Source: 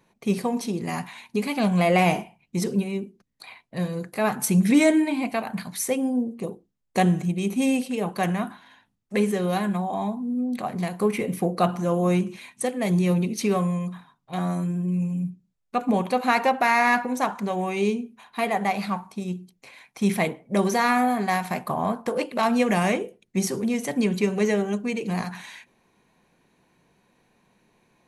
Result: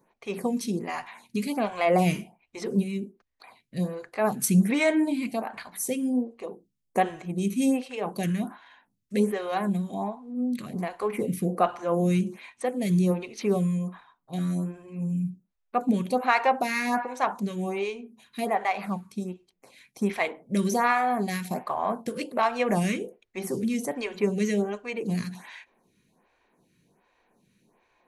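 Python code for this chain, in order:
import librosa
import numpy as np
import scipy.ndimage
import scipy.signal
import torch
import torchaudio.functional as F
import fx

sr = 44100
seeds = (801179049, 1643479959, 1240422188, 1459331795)

y = fx.stagger_phaser(x, sr, hz=1.3)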